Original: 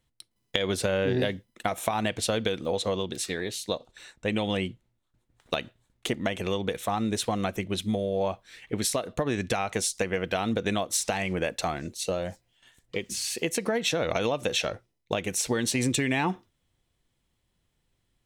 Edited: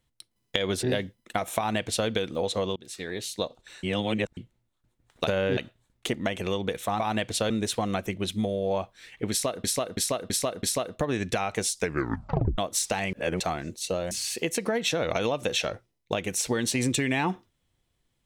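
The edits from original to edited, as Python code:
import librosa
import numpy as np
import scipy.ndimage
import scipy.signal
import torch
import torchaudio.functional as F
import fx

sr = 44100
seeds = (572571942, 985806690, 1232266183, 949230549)

y = fx.edit(x, sr, fx.move(start_s=0.83, length_s=0.3, to_s=5.57),
    fx.duplicate(start_s=1.88, length_s=0.5, to_s=7.0),
    fx.fade_in_from(start_s=3.06, length_s=0.47, floor_db=-23.5),
    fx.reverse_span(start_s=4.13, length_s=0.54),
    fx.repeat(start_s=8.81, length_s=0.33, count=5),
    fx.tape_stop(start_s=9.97, length_s=0.79),
    fx.reverse_span(start_s=11.31, length_s=0.27),
    fx.cut(start_s=12.29, length_s=0.82), tone=tone)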